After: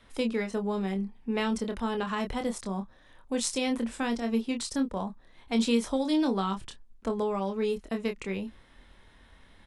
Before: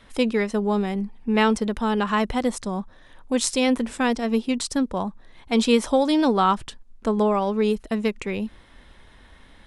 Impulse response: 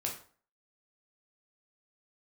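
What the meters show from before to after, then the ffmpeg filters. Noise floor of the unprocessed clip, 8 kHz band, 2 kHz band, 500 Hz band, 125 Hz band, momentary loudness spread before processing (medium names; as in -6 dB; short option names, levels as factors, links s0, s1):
-51 dBFS, -6.0 dB, -8.5 dB, -8.0 dB, no reading, 10 LU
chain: -filter_complex "[0:a]asplit=2[s0][s1];[s1]adelay=26,volume=0.501[s2];[s0][s2]amix=inputs=2:normalize=0,acrossover=split=330|3000[s3][s4][s5];[s4]acompressor=threshold=0.0794:ratio=6[s6];[s3][s6][s5]amix=inputs=3:normalize=0,volume=0.447"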